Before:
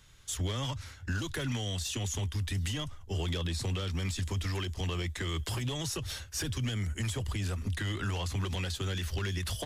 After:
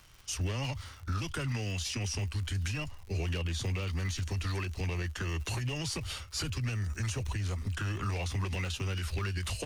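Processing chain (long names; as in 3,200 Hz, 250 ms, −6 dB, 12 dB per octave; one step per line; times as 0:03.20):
surface crackle 140 per second −43 dBFS
formants moved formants −3 semitones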